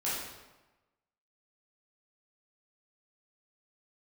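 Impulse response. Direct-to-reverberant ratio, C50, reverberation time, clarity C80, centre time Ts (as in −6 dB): −9.5 dB, −0.5 dB, 1.1 s, 3.0 dB, 76 ms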